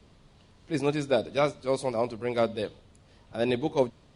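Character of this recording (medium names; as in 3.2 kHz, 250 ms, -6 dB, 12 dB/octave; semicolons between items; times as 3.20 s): noise floor -58 dBFS; spectral tilt -5.0 dB/octave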